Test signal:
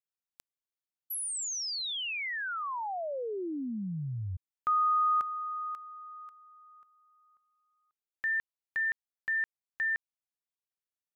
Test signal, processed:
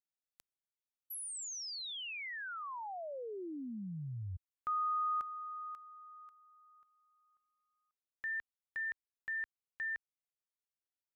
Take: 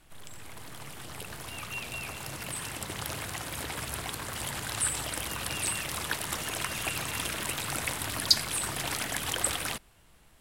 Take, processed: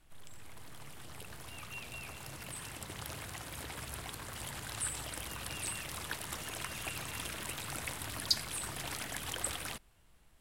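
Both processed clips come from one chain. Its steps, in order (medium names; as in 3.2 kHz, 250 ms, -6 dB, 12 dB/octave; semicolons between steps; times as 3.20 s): bass shelf 76 Hz +6 dB; trim -8 dB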